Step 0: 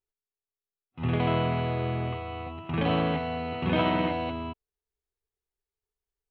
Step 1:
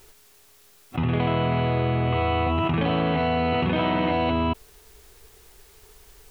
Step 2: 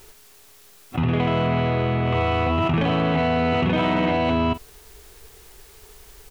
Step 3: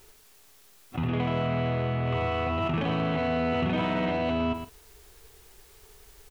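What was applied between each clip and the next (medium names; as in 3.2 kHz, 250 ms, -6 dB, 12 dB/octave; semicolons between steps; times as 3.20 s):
level flattener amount 100%
in parallel at -4 dB: saturation -26 dBFS, distortion -9 dB; on the sum: doubling 44 ms -13.5 dB
delay 114 ms -9 dB; trim -7 dB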